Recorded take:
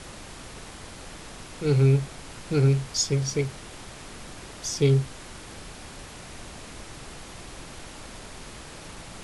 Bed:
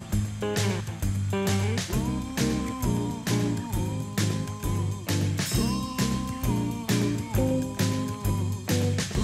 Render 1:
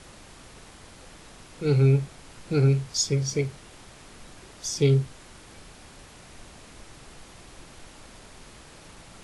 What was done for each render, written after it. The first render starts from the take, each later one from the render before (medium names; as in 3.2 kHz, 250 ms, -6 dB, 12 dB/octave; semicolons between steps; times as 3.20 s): noise print and reduce 6 dB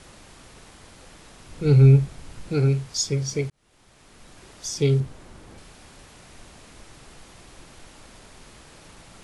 1.46–2.49 s: bass shelf 180 Hz +10.5 dB; 3.50–4.48 s: fade in; 5.00–5.58 s: tilt shelf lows +5 dB, about 1.2 kHz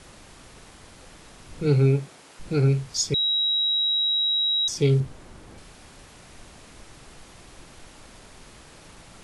1.65–2.39 s: high-pass 140 Hz -> 440 Hz; 3.14–4.68 s: bleep 3.85 kHz -20 dBFS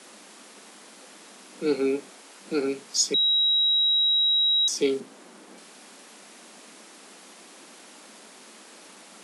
steep high-pass 190 Hz 72 dB/octave; treble shelf 5.3 kHz +4.5 dB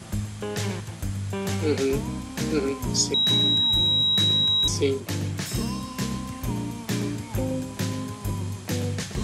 add bed -2.5 dB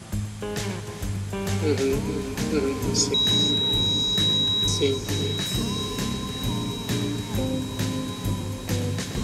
on a send: echo that smears into a reverb 1068 ms, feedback 60%, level -10.5 dB; on the sum: gated-style reverb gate 490 ms rising, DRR 9 dB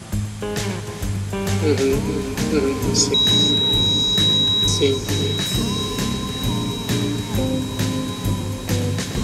trim +5 dB